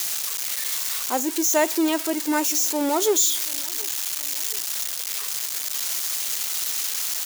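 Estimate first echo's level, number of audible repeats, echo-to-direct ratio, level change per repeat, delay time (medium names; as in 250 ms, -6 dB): -24.0 dB, 2, -23.0 dB, -5.0 dB, 724 ms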